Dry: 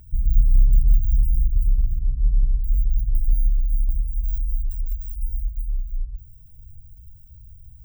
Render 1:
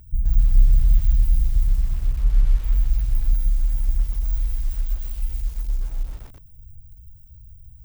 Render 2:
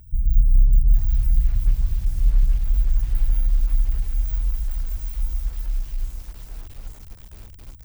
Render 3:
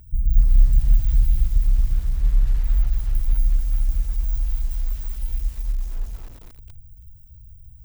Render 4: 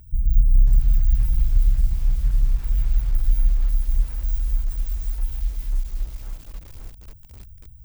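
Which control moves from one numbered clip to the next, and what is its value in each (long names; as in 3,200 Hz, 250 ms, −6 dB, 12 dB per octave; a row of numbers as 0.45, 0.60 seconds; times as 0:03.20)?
feedback echo at a low word length, delay time: 127, 828, 228, 541 milliseconds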